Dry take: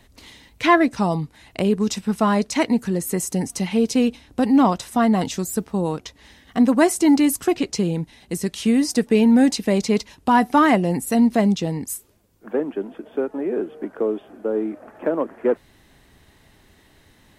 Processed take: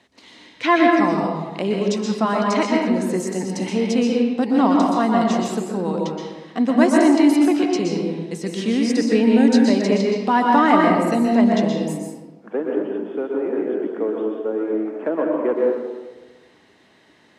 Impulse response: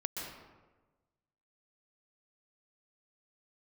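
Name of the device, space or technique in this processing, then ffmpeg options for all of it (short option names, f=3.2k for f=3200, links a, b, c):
supermarket ceiling speaker: -filter_complex "[0:a]highpass=220,lowpass=6.1k[a];[1:a]atrim=start_sample=2205[b];[a][b]afir=irnorm=-1:irlink=0"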